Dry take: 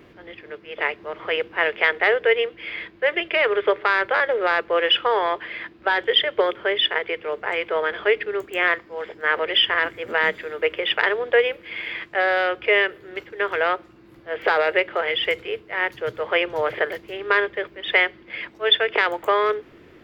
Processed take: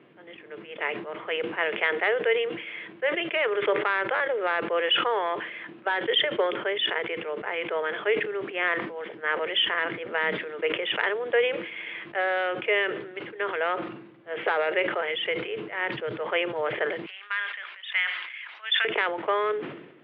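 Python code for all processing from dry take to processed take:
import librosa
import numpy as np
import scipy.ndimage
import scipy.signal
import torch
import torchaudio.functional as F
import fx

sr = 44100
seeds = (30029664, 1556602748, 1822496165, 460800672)

y = fx.chain(x, sr, fx.bessel_highpass(hz=1700.0, order=4),
    fx.sustainer(db_per_s=52.0), at=(17.06, 18.85))
y = scipy.signal.sosfilt(scipy.signal.ellip(3, 1.0, 40, [140.0, 3200.0], 'bandpass', fs=sr, output='sos'), y)
y = fx.sustainer(y, sr, db_per_s=65.0)
y = y * librosa.db_to_amplitude(-5.5)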